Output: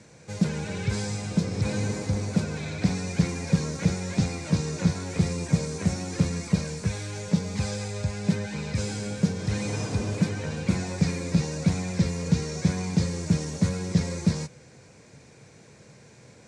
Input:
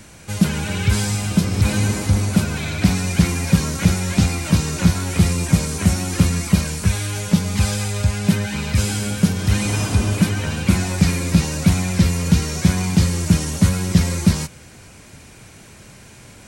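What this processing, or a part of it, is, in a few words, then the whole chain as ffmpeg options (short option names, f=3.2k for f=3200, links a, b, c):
car door speaker: -af "highpass=98,equalizer=f=140:t=q:w=4:g=6,equalizer=f=480:t=q:w=4:g=9,equalizer=f=1.3k:t=q:w=4:g=-4,equalizer=f=3k:t=q:w=4:g=-8,lowpass=f=7.6k:w=0.5412,lowpass=f=7.6k:w=1.3066,volume=-8.5dB"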